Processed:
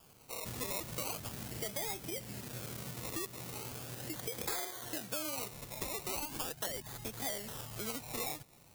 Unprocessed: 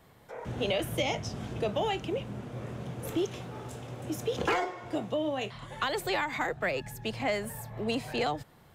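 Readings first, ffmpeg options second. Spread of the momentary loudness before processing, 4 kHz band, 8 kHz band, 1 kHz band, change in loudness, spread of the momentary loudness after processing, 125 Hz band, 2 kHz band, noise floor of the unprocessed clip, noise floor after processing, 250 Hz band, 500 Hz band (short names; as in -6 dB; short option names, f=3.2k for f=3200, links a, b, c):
10 LU, -6.0 dB, +6.0 dB, -11.5 dB, -6.5 dB, 6 LU, -8.5 dB, -11.0 dB, -58 dBFS, -61 dBFS, -11.0 dB, -12.5 dB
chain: -af "acrusher=samples=22:mix=1:aa=0.000001:lfo=1:lforange=13.2:lforate=0.39,acompressor=threshold=-36dB:ratio=4,crystalizer=i=4:c=0,volume=-5.5dB"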